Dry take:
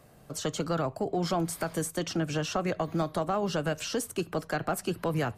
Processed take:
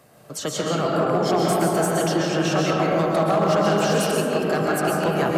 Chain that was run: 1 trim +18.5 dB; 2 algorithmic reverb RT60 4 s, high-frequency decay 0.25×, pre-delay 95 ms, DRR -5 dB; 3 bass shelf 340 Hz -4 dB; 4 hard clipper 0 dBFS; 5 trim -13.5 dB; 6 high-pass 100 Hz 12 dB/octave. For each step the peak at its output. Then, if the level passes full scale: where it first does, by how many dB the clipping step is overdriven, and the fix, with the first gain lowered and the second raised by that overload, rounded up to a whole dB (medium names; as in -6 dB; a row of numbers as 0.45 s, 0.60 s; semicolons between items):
+1.5 dBFS, +7.5 dBFS, +6.5 dBFS, 0.0 dBFS, -13.5 dBFS, -10.0 dBFS; step 1, 6.5 dB; step 1 +11.5 dB, step 5 -6.5 dB